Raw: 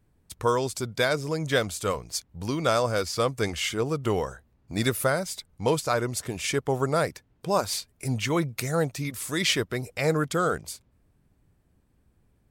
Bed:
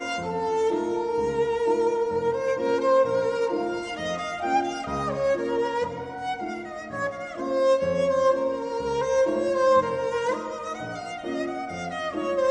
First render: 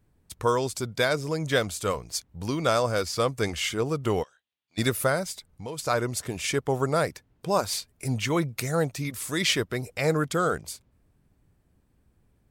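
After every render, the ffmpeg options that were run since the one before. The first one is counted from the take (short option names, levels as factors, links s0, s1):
-filter_complex "[0:a]asplit=3[s0][s1][s2];[s0]afade=t=out:st=4.22:d=0.02[s3];[s1]bandpass=f=3300:t=q:w=3.6,afade=t=in:st=4.22:d=0.02,afade=t=out:st=4.77:d=0.02[s4];[s2]afade=t=in:st=4.77:d=0.02[s5];[s3][s4][s5]amix=inputs=3:normalize=0,asplit=3[s6][s7][s8];[s6]afade=t=out:st=5.31:d=0.02[s9];[s7]acompressor=threshold=0.0126:ratio=2.5:attack=3.2:release=140:knee=1:detection=peak,afade=t=in:st=5.31:d=0.02,afade=t=out:st=5.78:d=0.02[s10];[s8]afade=t=in:st=5.78:d=0.02[s11];[s9][s10][s11]amix=inputs=3:normalize=0"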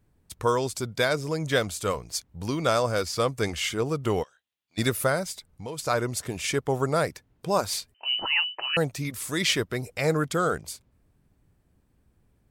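-filter_complex "[0:a]asettb=1/sr,asplit=3[s0][s1][s2];[s0]atrim=end=7.944[s3];[s1]atrim=start=7.94:end=8.77,asetpts=PTS-STARTPTS,afade=t=in:d=0.004:c=qsin,afade=t=out:st=0.826:d=0.004:c=qsin,lowpass=f=2600:t=q:w=0.5098,lowpass=f=2600:t=q:w=0.6013,lowpass=f=2600:t=q:w=0.9,lowpass=f=2600:t=q:w=2.563,afreqshift=-3100[s4];[s2]atrim=start=8.766[s5];[s3][s4]acrossfade=d=0.004:c1=hsin:c2=qsin[s6];[s6][s5]acrossfade=d=0.004:c1=qsin:c2=hsin"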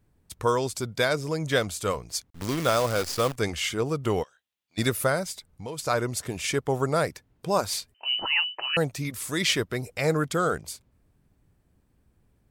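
-filter_complex "[0:a]asettb=1/sr,asplit=3[s0][s1][s2];[s0]atrim=end=2.304[s3];[s1]atrim=start=2.3:end=3.36,asetpts=PTS-STARTPTS,afade=t=in:d=0.004:c=qsin,afade=t=out:st=1.056:d=0.004:c=qsin,acrusher=bits=6:dc=4:mix=0:aa=0.000001[s4];[s2]atrim=start=3.356[s5];[s3][s4]acrossfade=d=0.004:c1=hsin:c2=qsin[s6];[s6][s5]acrossfade=d=0.004:c1=qsin:c2=hsin"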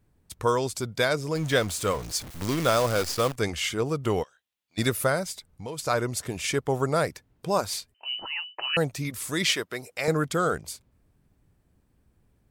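-filter_complex "[0:a]asettb=1/sr,asplit=3[s0][s1][s2];[s0]atrim=end=1.354[s3];[s1]atrim=start=1.35:end=3.13,asetpts=PTS-STARTPTS,afade=t=in:d=0.004:c=qsin,afade=t=out:st=1.776:d=0.004:c=qsin,aeval=exprs='val(0)+0.5*0.0178*sgn(val(0))':c=same[s4];[s2]atrim=start=3.126[s5];[s3][s4]acrossfade=d=0.004:c1=hsin:c2=qsin[s6];[s6][s5]acrossfade=d=0.004:c1=qsin:c2=hsin,asettb=1/sr,asplit=3[s7][s8][s9];[s7]atrim=end=9.514[s10];[s8]atrim=start=9.51:end=10.08,asetpts=PTS-STARTPTS,afade=t=in:d=0.004:c=qsin,afade=t=out:st=0.566:d=0.004:c=qsin,highpass=f=520:p=1[s11];[s9]atrim=start=10.076[s12];[s10][s11]acrossfade=d=0.004:c1=hsin:c2=qsin[s13];[s13][s12]acrossfade=d=0.004:c1=qsin:c2=hsin,asplit=2[s14][s15];[s14]atrim=end=8.58,asetpts=PTS-STARTPTS,afade=t=out:st=7.46:d=1.12:silence=0.223872[s16];[s15]atrim=start=8.58,asetpts=PTS-STARTPTS,afade=t=in:d=0.004:c=hsin:silence=0.223872[s17];[s16][s17]concat=n=2:v=0:a=1"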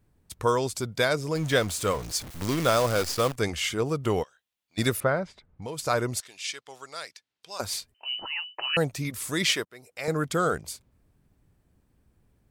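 -filter_complex "[0:a]asettb=1/sr,asplit=3[s0][s1][s2];[s0]atrim=end=5.004[s3];[s1]atrim=start=5:end=5.62,asetpts=PTS-STARTPTS,afade=t=in:d=0.004:c=qsin,afade=t=out:st=0.616:d=0.004:c=qsin,lowpass=2100[s4];[s2]atrim=start=5.616[s5];[s3][s4]acrossfade=d=0.004:c1=hsin:c2=qsin[s6];[s6][s5]acrossfade=d=0.004:c1=qsin:c2=hsin,asettb=1/sr,asplit=3[s7][s8][s9];[s7]atrim=end=6.204[s10];[s8]atrim=start=6.2:end=7.6,asetpts=PTS-STARTPTS,afade=t=in:d=0.004:c=qsin,afade=t=out:st=1.396:d=0.004:c=qsin,bandpass=f=4200:t=q:w=1.2[s11];[s9]atrim=start=7.596[s12];[s10][s11]acrossfade=d=0.004:c1=hsin:c2=qsin[s13];[s13][s12]acrossfade=d=0.004:c1=qsin:c2=hsin,asplit=2[s14][s15];[s14]atrim=end=9.65,asetpts=PTS-STARTPTS,afade=t=out:st=9.646:d=0.004:c=hsin:silence=0.0668344[s16];[s15]atrim=start=9.65,asetpts=PTS-STARTPTS,afade=t=in:d=0.69:silence=0.0668344[s17];[s16][s17]concat=n=2:v=0:a=1"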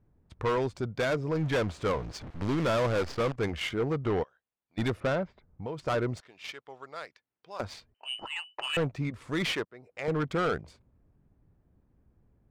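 -af "volume=14.1,asoftclip=hard,volume=0.0708,adynamicsmooth=sensitivity=2:basefreq=1600"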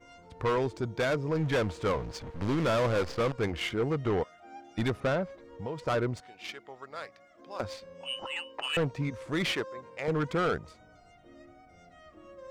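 -filter_complex "[1:a]volume=0.0596[s0];[0:a][s0]amix=inputs=2:normalize=0"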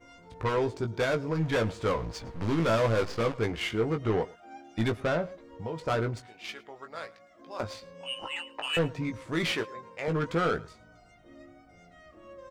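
-filter_complex "[0:a]asplit=2[s0][s1];[s1]adelay=18,volume=0.473[s2];[s0][s2]amix=inputs=2:normalize=0,aecho=1:1:109:0.0794"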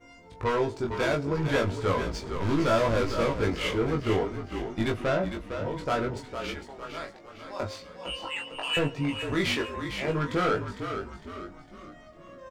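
-filter_complex "[0:a]asplit=2[s0][s1];[s1]adelay=21,volume=0.668[s2];[s0][s2]amix=inputs=2:normalize=0,asplit=6[s3][s4][s5][s6][s7][s8];[s4]adelay=455,afreqshift=-44,volume=0.398[s9];[s5]adelay=910,afreqshift=-88,volume=0.176[s10];[s6]adelay=1365,afreqshift=-132,volume=0.0767[s11];[s7]adelay=1820,afreqshift=-176,volume=0.0339[s12];[s8]adelay=2275,afreqshift=-220,volume=0.015[s13];[s3][s9][s10][s11][s12][s13]amix=inputs=6:normalize=0"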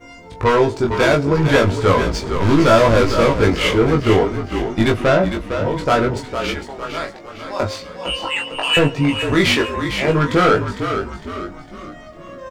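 -af "volume=3.98,alimiter=limit=0.708:level=0:latency=1"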